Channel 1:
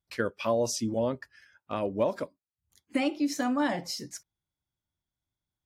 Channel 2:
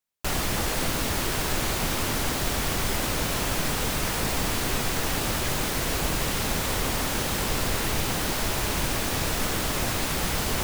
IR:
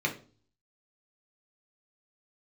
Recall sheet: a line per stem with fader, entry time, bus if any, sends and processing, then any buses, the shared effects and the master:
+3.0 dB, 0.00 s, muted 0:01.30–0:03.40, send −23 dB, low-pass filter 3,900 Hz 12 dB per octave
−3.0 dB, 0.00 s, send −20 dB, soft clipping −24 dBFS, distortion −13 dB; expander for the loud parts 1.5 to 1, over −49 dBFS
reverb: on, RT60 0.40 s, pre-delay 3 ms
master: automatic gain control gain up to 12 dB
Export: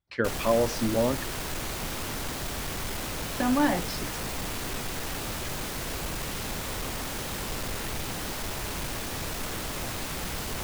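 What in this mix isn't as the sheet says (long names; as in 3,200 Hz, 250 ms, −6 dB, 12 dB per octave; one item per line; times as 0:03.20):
stem 2: send off
master: missing automatic gain control gain up to 12 dB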